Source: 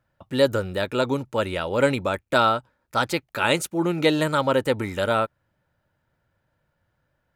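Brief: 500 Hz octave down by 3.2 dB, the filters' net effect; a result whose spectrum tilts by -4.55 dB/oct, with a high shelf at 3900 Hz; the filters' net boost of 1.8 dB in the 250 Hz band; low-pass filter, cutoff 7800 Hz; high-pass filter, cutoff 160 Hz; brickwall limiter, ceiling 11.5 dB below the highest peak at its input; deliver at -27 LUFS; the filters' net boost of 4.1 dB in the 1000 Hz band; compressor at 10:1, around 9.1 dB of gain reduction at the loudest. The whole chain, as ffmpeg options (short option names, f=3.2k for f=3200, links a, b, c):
-af "highpass=160,lowpass=7.8k,equalizer=f=250:t=o:g=5,equalizer=f=500:t=o:g=-7,equalizer=f=1k:t=o:g=8,highshelf=f=3.9k:g=-7.5,acompressor=threshold=-22dB:ratio=10,volume=6dB,alimiter=limit=-15.5dB:level=0:latency=1"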